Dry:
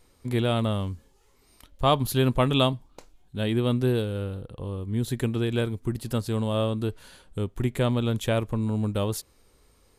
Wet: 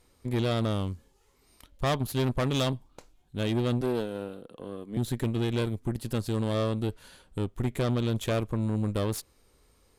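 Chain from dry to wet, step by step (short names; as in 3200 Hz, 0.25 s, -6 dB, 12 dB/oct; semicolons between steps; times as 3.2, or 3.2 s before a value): 3.81–4.97 HPF 210 Hz 24 dB/oct; tube stage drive 24 dB, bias 0.75; 1.92–2.67 upward expander 1.5:1, over -36 dBFS; gain +2 dB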